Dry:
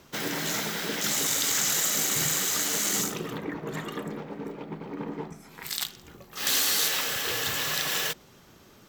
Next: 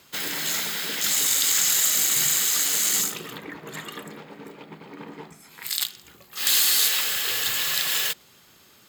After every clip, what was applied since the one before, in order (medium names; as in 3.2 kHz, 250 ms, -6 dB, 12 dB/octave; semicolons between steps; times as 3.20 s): high-pass 50 Hz; tilt shelf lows -6.5 dB, about 1.4 kHz; band-stop 5.8 kHz, Q 6.9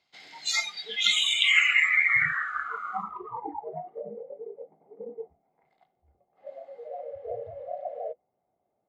low-pass sweep 4.5 kHz -> 620 Hz, 0.72–4.11 s; spectral noise reduction 26 dB; small resonant body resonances 740/2100 Hz, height 15 dB, ringing for 25 ms; trim +1.5 dB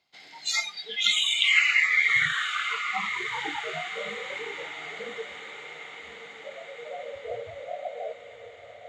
echo that smears into a reverb 1150 ms, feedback 58%, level -10 dB